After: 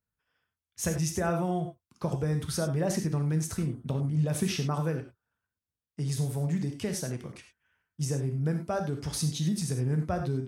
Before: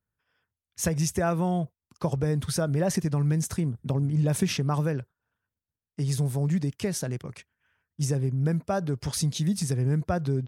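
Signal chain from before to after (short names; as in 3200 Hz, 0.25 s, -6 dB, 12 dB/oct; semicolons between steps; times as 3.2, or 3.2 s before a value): non-linear reverb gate 0.12 s flat, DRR 4.5 dB; gain -4 dB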